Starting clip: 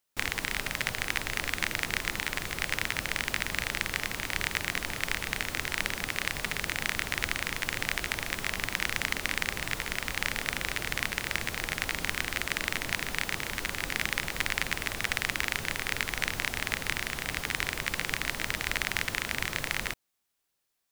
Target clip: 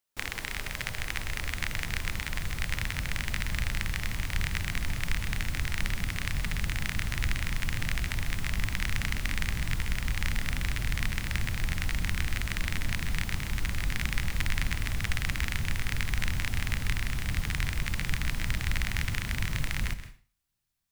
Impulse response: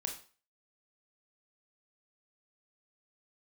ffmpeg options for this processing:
-filter_complex "[0:a]asubboost=boost=8:cutoff=150,asplit=2[a][b];[1:a]atrim=start_sample=2205,adelay=130[c];[b][c]afir=irnorm=-1:irlink=0,volume=-12dB[d];[a][d]amix=inputs=2:normalize=0,volume=-4dB"

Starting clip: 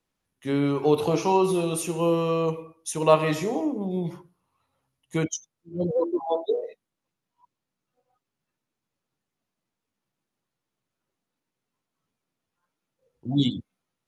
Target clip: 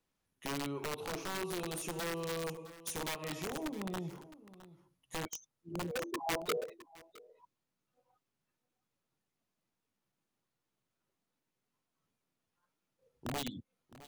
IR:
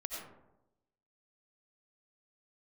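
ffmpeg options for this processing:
-filter_complex "[0:a]acompressor=threshold=-35dB:ratio=4,aeval=exprs='(mod(28.2*val(0)+1,2)-1)/28.2':c=same,aecho=1:1:662:0.141,asettb=1/sr,asplit=3[a][b][c];[a]atrim=end=6.174[d];[b]atrim=start=6.17:end=6.64,asetpts=PTS-STARTPTS,afade=t=in:d=0.004:c=qsin,afade=t=out:st=0.466:d=0.004:c=qsin,acontrast=26[e];[c]atrim=start=6.636[f];[d][e]acrossfade=d=0.004:c1=hsin:c2=qsin[g];[g][f]acrossfade=d=0.004:c1=qsin:c2=hsin,volume=-3dB"

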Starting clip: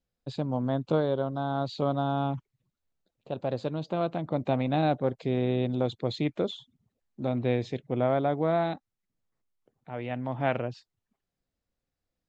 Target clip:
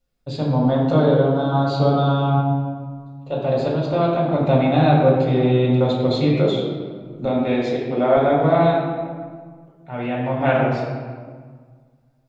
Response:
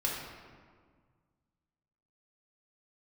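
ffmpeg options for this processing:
-filter_complex "[0:a]asettb=1/sr,asplit=3[a][b][c];[a]atrim=end=7.254[d];[b]atrim=start=7.25:end=8.17,asetpts=PTS-STARTPTS,afade=t=in:d=0.004:c=qsin,afade=t=out:st=0.916:d=0.004:c=qsin,highpass=230[e];[c]atrim=start=8.166[f];[d][e]acrossfade=d=0.004:c1=hsin:c2=qsin[g];[g][f]acrossfade=d=0.004:c1=qsin:c2=hsin[h];[1:a]atrim=start_sample=2205[i];[h][i]afir=irnorm=-1:irlink=0,volume=4.5dB"

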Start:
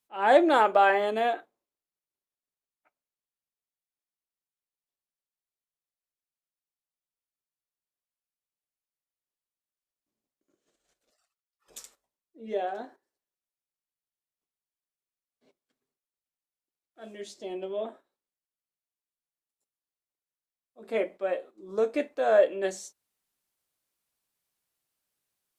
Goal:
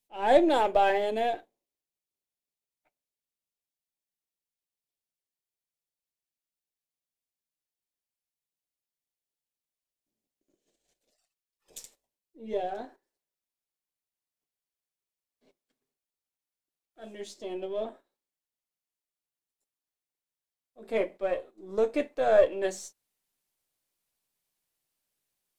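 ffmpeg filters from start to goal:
-af "aeval=exprs='if(lt(val(0),0),0.708*val(0),val(0))':c=same,asetnsamples=n=441:p=0,asendcmd='12.71 equalizer g -3.5',equalizer=f=1.3k:t=o:w=0.69:g=-13,volume=1.5dB"

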